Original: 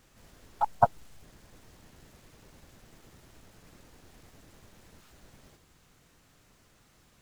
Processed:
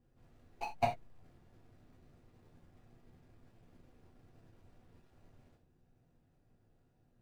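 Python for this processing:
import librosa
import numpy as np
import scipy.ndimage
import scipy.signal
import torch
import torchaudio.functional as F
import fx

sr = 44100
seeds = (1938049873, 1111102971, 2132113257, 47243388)

y = scipy.ndimage.median_filter(x, 41, mode='constant')
y = fx.rev_gated(y, sr, seeds[0], gate_ms=110, shape='falling', drr_db=-1.5)
y = y * 10.0 ** (-8.5 / 20.0)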